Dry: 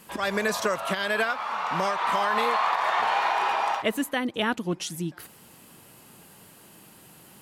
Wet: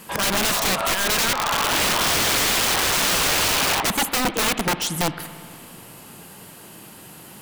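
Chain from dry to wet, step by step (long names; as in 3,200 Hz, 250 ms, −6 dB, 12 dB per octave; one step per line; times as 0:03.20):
wrap-around overflow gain 24 dB
spring reverb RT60 2.6 s, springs 57 ms, chirp 40 ms, DRR 12.5 dB
level +8.5 dB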